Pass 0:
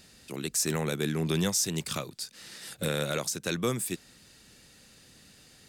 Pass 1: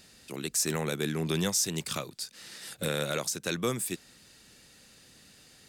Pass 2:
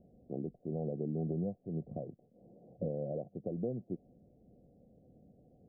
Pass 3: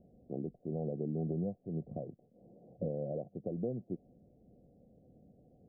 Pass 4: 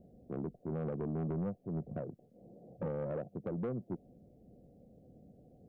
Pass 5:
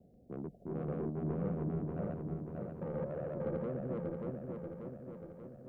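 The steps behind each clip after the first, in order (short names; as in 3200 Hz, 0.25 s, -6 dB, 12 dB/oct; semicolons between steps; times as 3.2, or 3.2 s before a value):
low shelf 230 Hz -3.5 dB
compressor, threshold -32 dBFS, peak gain reduction 8.5 dB; rippled Chebyshev low-pass 740 Hz, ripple 3 dB; gain +2 dB
nothing audible
soft clip -34 dBFS, distortion -12 dB; gain +3 dB
regenerating reverse delay 0.293 s, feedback 75%, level 0 dB; gate with hold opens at -52 dBFS; gain -3.5 dB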